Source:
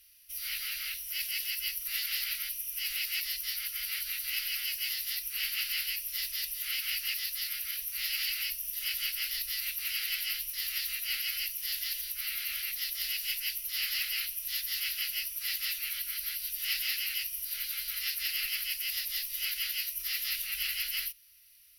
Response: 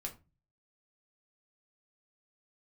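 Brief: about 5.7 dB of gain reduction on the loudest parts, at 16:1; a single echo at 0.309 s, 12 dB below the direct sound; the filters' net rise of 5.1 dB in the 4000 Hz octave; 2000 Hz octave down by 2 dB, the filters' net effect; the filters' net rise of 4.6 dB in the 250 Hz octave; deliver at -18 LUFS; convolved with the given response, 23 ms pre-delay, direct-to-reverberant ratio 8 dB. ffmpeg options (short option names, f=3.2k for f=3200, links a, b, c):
-filter_complex "[0:a]equalizer=f=250:t=o:g=8,equalizer=f=2k:t=o:g=-7,equalizer=f=4k:t=o:g=9,acompressor=threshold=-31dB:ratio=16,aecho=1:1:309:0.251,asplit=2[a][b];[1:a]atrim=start_sample=2205,adelay=23[c];[b][c]afir=irnorm=-1:irlink=0,volume=-6.5dB[d];[a][d]amix=inputs=2:normalize=0,volume=14dB"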